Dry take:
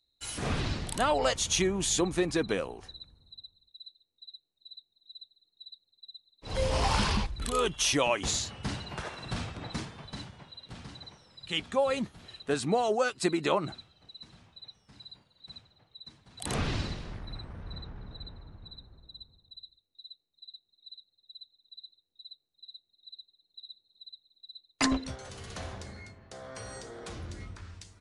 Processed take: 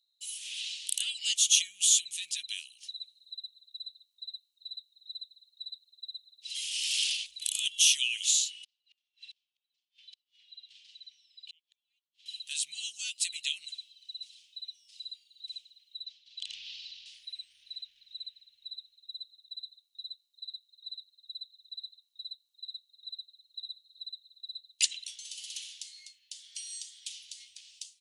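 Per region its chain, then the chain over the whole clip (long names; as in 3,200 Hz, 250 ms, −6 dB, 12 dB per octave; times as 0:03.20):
0:08.64–0:12.26: head-to-tape spacing loss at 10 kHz 25 dB + gate with flip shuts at −34 dBFS, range −38 dB
0:16.05–0:17.06: low-pass filter 5,000 Hz 24 dB per octave + low-shelf EQ 480 Hz +12 dB + downward compressor 2 to 1, threshold −35 dBFS
whole clip: elliptic high-pass filter 2,900 Hz, stop band 60 dB; dynamic equaliser 4,800 Hz, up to −7 dB, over −52 dBFS, Q 2.1; automatic gain control gain up to 9 dB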